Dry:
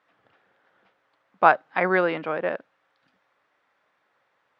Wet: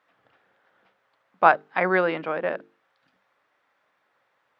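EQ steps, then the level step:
mains-hum notches 50/100/150/200/250/300/350/400/450 Hz
0.0 dB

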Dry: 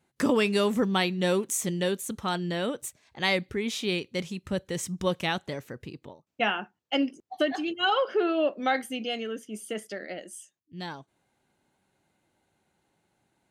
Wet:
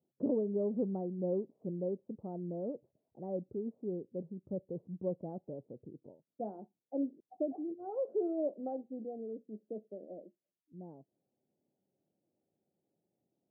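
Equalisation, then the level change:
high-pass filter 150 Hz 12 dB per octave
Butterworth low-pass 650 Hz 36 dB per octave
−7.5 dB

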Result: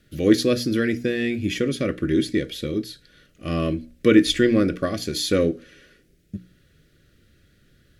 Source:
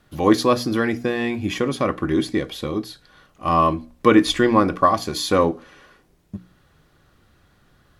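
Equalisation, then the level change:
Butterworth band-reject 920 Hz, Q 0.88
0.0 dB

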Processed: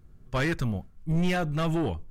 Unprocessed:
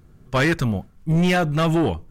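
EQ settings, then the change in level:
low-shelf EQ 60 Hz +11.5 dB
−8.5 dB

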